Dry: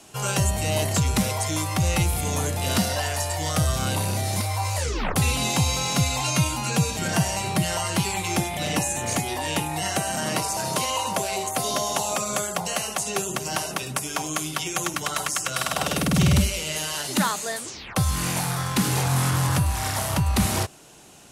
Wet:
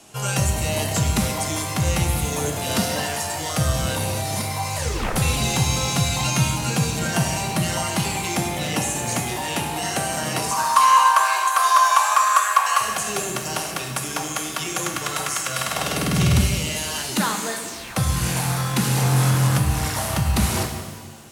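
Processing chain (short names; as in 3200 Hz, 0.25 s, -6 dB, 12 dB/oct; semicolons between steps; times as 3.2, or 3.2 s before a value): 10.51–12.81 resonant high-pass 1100 Hz, resonance Q 12; shimmer reverb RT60 1.4 s, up +7 st, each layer -8 dB, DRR 4 dB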